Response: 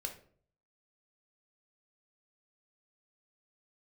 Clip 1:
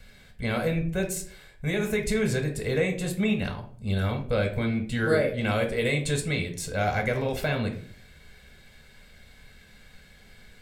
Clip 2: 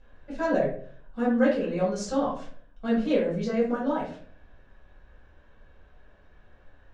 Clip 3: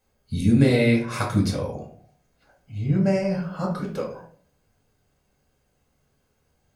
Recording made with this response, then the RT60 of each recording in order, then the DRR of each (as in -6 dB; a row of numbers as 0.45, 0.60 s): 1; 0.50, 0.50, 0.50 s; 3.5, -7.0, -1.5 dB